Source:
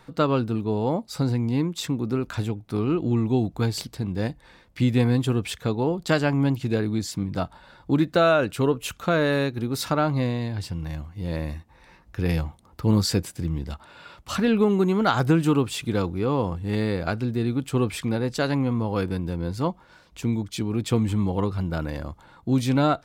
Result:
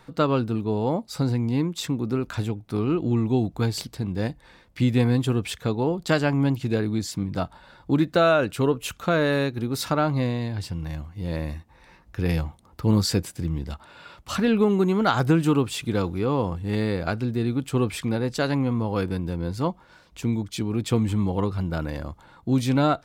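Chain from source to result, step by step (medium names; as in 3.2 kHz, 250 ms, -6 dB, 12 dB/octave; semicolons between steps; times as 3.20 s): 16.06–16.62 s: tape noise reduction on one side only encoder only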